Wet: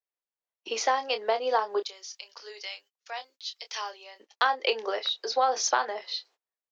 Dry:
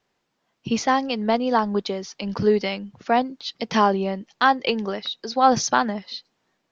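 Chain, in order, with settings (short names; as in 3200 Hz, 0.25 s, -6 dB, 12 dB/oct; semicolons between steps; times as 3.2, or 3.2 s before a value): 1.82–4.2 differentiator; doubler 27 ms -9.5 dB; compressor 12:1, threshold -19 dBFS, peak gain reduction 10 dB; steep high-pass 390 Hz 36 dB/oct; gate -54 dBFS, range -28 dB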